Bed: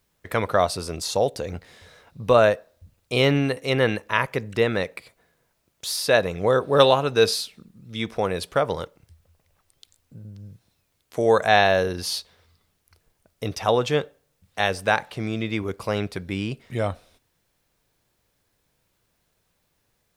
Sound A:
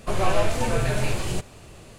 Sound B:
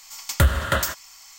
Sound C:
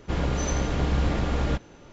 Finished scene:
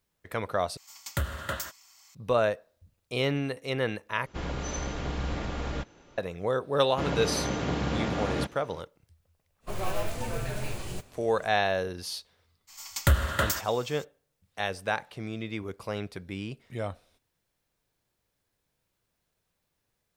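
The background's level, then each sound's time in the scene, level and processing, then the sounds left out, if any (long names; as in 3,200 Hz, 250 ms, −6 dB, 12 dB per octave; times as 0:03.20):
bed −8.5 dB
0:00.77: overwrite with B −11 dB + high-pass filter 67 Hz
0:04.26: overwrite with C −4.5 dB + low-shelf EQ 460 Hz −4.5 dB
0:06.89: mix in C −1 dB + high-pass filter 120 Hz
0:09.60: mix in A −9.5 dB, fades 0.10 s + noise that follows the level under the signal 21 dB
0:12.67: mix in B −4.5 dB, fades 0.02 s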